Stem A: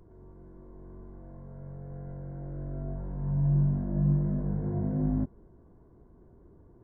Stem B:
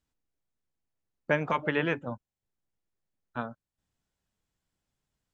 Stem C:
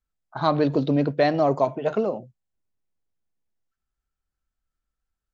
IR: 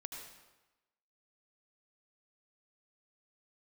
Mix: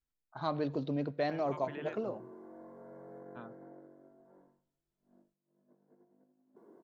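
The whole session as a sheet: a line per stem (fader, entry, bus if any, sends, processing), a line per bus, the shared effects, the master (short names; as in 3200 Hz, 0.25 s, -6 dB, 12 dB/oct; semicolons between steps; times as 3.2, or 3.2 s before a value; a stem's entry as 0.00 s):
-6.0 dB, 1.30 s, no send, negative-ratio compressor -41 dBFS, ratio -0.5; HPF 270 Hz 24 dB/oct
-12.5 dB, 0.00 s, no send, limiter -22.5 dBFS, peak gain reduction 11.5 dB
-13.5 dB, 0.00 s, send -19 dB, dry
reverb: on, RT60 1.1 s, pre-delay 71 ms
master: dry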